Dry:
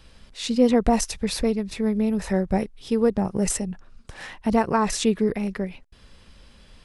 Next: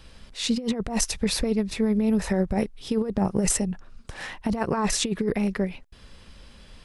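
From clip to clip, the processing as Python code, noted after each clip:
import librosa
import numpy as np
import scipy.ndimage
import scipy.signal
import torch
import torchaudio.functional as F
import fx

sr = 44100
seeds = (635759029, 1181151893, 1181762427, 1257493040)

y = fx.over_compress(x, sr, threshold_db=-22.0, ratio=-0.5)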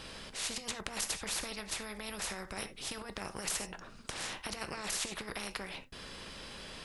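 y = fx.rev_gated(x, sr, seeds[0], gate_ms=110, shape='falling', drr_db=11.5)
y = fx.spectral_comp(y, sr, ratio=4.0)
y = y * 10.0 ** (-4.5 / 20.0)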